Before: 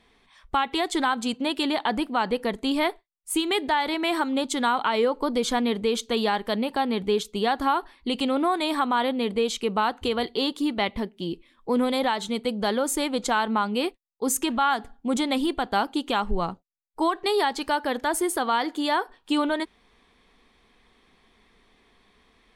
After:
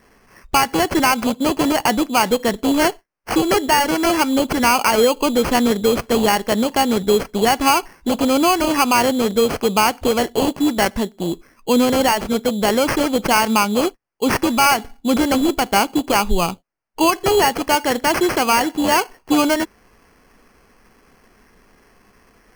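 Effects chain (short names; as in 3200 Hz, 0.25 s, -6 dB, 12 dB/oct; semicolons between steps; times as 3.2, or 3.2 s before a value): sample-rate reducer 3700 Hz, jitter 0%; gain +8 dB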